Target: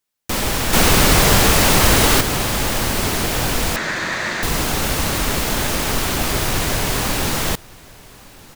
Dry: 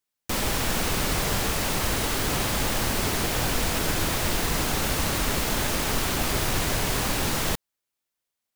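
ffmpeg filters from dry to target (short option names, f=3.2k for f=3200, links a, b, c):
-filter_complex "[0:a]asettb=1/sr,asplit=3[a][b][c];[a]atrim=end=0.734[d];[b]atrim=start=0.73:end=2.21,asetpts=PTS-STARTPTS,afade=t=in:d=0.004:c=qsin,afade=t=out:st=1.476:d=0.004:c=qsin,acontrast=87[e];[c]atrim=start=2.206[f];[d][e]acrossfade=d=0.004:c1=hsin:c2=qsin[g];[g][f]acrossfade=d=0.004:c1=qsin:c2=hsin,asettb=1/sr,asplit=3[h][i][j];[h]atrim=end=3.764[k];[i]atrim=start=3.76:end=4.43,asetpts=PTS-STARTPTS,afade=t=in:d=0.004:c=qsin,afade=t=out:st=0.666:d=0.004:c=qsin,highpass=220,equalizer=f=280:t=q:w=4:g=-7,equalizer=f=440:t=q:w=4:g=-7,equalizer=f=780:t=q:w=4:g=-5,equalizer=f=1.8k:t=q:w=4:g=10,equalizer=f=3k:t=q:w=4:g=-7,equalizer=f=5.3k:t=q:w=4:g=-7,lowpass=f=6.2k:w=0.5412,lowpass=f=6.2k:w=1.3066[l];[j]atrim=start=4.426[m];[k][l]acrossfade=d=0.004:c1=hsin:c2=qsin[n];[n][m]acrossfade=d=0.004:c1=qsin:c2=hsin,asplit=2[o][p];[p]aecho=0:1:1161:0.075[q];[o][q]amix=inputs=2:normalize=0,volume=5.5dB"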